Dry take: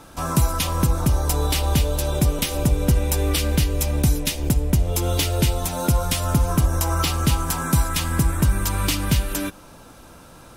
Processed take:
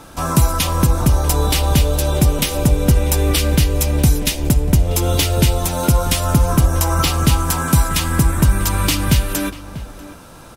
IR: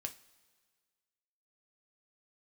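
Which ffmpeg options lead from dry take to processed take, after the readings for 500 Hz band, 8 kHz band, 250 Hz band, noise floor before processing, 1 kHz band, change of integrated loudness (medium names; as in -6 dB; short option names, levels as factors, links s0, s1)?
+5.0 dB, +5.0 dB, +5.0 dB, -45 dBFS, +5.0 dB, +5.0 dB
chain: -filter_complex "[0:a]asplit=2[s0][s1];[s1]adelay=641.4,volume=0.178,highshelf=f=4000:g=-14.4[s2];[s0][s2]amix=inputs=2:normalize=0,volume=1.78"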